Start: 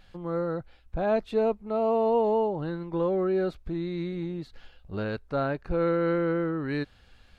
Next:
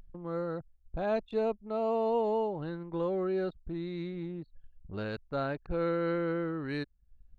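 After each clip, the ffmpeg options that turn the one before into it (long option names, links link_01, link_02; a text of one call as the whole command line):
ffmpeg -i in.wav -af "anlmdn=0.251,highshelf=frequency=3600:gain=8.5,acompressor=mode=upward:threshold=-36dB:ratio=2.5,volume=-5.5dB" out.wav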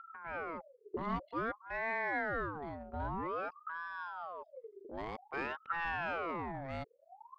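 ffmpeg -i in.wav -af "equalizer=frequency=400:width=0.51:gain=-5.5,adynamicsmooth=sensitivity=2.5:basefreq=2000,aeval=exprs='val(0)*sin(2*PI*870*n/s+870*0.55/0.52*sin(2*PI*0.52*n/s))':channel_layout=same,volume=1dB" out.wav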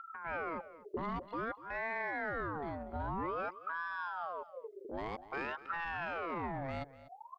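ffmpeg -i in.wav -af "alimiter=level_in=9dB:limit=-24dB:level=0:latency=1:release=24,volume=-9dB,aecho=1:1:243:0.141,volume=3.5dB" out.wav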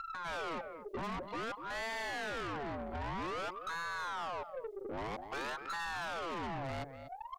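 ffmpeg -i in.wav -af "aeval=exprs='(tanh(158*val(0)+0.2)-tanh(0.2))/158':channel_layout=same,volume=7.5dB" out.wav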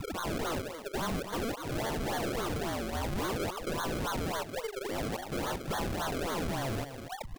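ffmpeg -i in.wav -af "acrusher=samples=33:mix=1:aa=0.000001:lfo=1:lforange=33:lforate=3.6,volume=6dB" out.wav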